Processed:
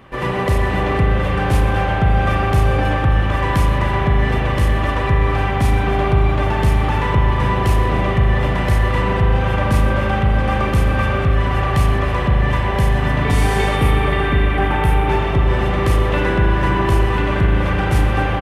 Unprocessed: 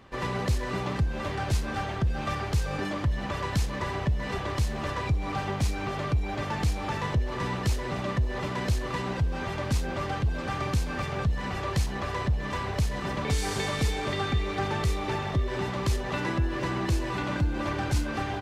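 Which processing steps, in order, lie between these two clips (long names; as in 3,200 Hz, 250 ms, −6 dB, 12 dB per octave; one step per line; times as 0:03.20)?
flat-topped bell 5,500 Hz −8 dB 1.2 octaves, from 0:13.75 −16 dB, from 0:15.09 −8 dB
single-tap delay 124 ms −14.5 dB
convolution reverb RT60 3.6 s, pre-delay 38 ms, DRR −0.5 dB
level +8.5 dB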